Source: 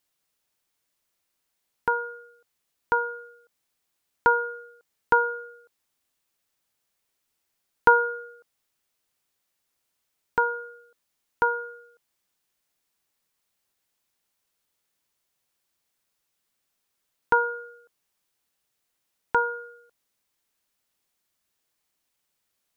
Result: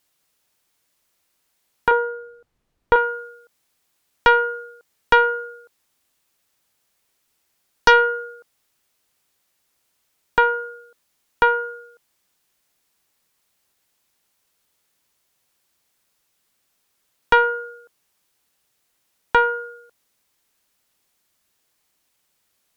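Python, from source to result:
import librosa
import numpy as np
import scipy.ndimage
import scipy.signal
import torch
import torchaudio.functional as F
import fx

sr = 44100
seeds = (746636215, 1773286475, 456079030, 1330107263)

y = fx.tilt_eq(x, sr, slope=-4.0, at=(1.91, 2.96))
y = fx.cheby_harmonics(y, sr, harmonics=(4, 5), levels_db=(-13, -14), full_scale_db=-4.0)
y = F.gain(torch.from_numpy(y), 2.0).numpy()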